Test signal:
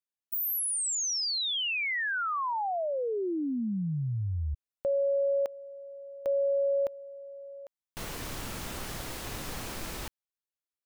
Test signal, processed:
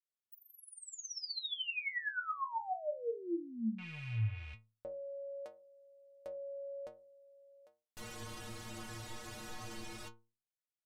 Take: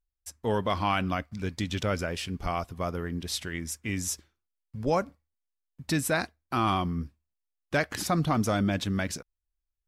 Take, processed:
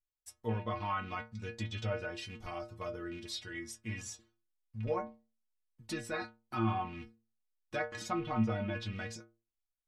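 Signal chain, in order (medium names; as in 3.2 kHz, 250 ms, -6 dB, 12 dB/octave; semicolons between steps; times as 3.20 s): rattle on loud lows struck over -30 dBFS, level -29 dBFS; inharmonic resonator 110 Hz, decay 0.37 s, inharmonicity 0.008; low-pass that closes with the level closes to 2.4 kHz, closed at -33.5 dBFS; trim +2.5 dB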